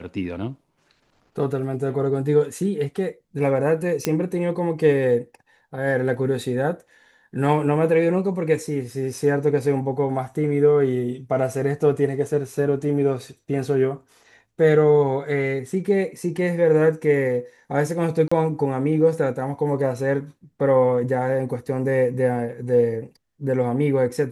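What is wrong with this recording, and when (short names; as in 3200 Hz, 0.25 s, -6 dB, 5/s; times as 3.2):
4.05 pop -6 dBFS
18.28–18.32 gap 35 ms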